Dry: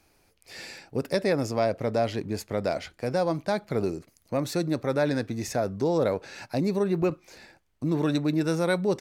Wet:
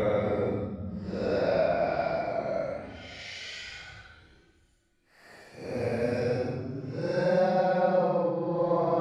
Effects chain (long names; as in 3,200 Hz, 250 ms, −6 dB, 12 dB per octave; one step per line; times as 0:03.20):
treble cut that deepens with the level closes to 2,300 Hz, closed at −20.5 dBFS
extreme stretch with random phases 12×, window 0.05 s, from 0:02.55
level −1.5 dB